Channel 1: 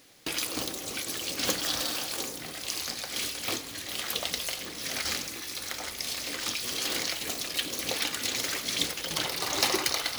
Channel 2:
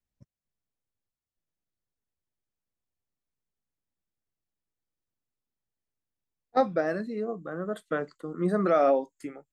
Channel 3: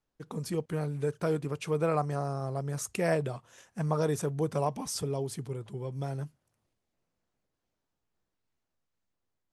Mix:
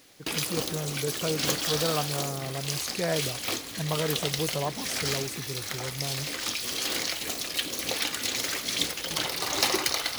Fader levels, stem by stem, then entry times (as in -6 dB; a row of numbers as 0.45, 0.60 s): +1.0 dB, off, -1.0 dB; 0.00 s, off, 0.00 s